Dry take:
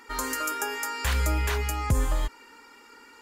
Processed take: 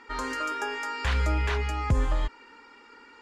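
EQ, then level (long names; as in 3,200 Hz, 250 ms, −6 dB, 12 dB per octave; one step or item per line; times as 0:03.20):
low-pass filter 4,100 Hz 12 dB per octave
0.0 dB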